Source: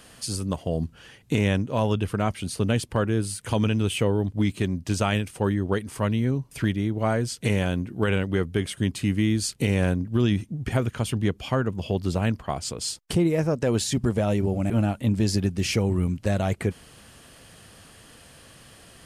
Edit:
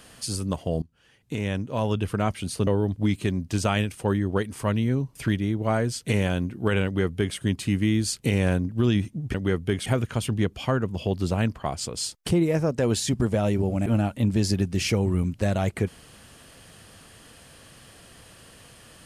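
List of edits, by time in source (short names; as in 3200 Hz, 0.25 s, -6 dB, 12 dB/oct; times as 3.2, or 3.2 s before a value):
0.82–2.13 fade in, from -23 dB
2.67–4.03 cut
8.21–8.73 copy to 10.7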